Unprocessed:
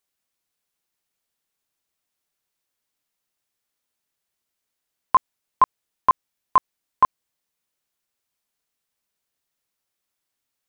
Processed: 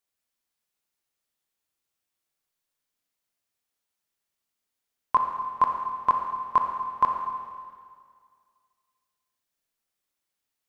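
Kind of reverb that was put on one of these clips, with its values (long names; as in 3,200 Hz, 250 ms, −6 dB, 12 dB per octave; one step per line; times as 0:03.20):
four-comb reverb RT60 2 s, combs from 27 ms, DRR 2.5 dB
level −5 dB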